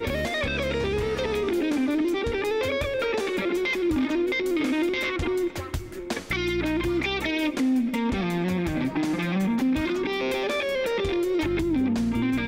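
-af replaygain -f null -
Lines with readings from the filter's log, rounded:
track_gain = +8.2 dB
track_peak = 0.099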